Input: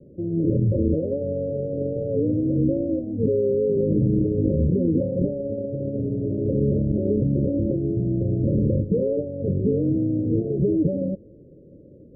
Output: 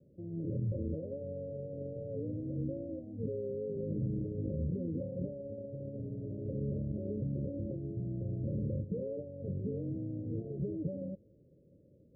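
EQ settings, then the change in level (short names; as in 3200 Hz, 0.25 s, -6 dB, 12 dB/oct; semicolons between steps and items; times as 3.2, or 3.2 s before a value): HPF 140 Hz 6 dB/oct; air absorption 260 m; bell 350 Hz -11 dB 2 oct; -6.0 dB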